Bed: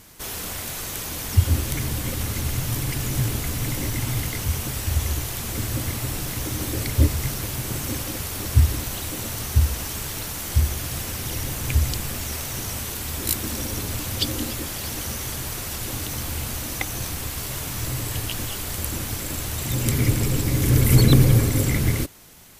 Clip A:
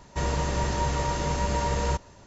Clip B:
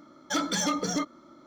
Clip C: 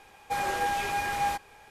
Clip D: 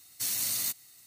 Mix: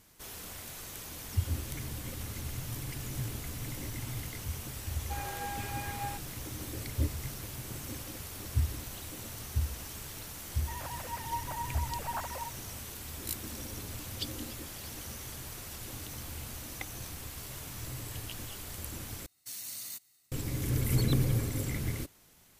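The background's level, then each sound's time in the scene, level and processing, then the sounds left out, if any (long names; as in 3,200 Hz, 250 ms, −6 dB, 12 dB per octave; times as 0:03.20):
bed −13 dB
0:04.80: mix in C −11 dB
0:10.52: mix in A −14 dB + three sine waves on the formant tracks
0:19.26: overwrite with D −11 dB + one half of a high-frequency compander decoder only
not used: B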